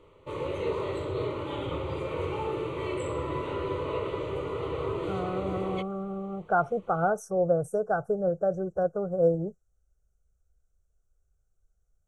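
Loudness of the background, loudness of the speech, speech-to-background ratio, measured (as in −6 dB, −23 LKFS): −33.0 LKFS, −29.0 LKFS, 4.0 dB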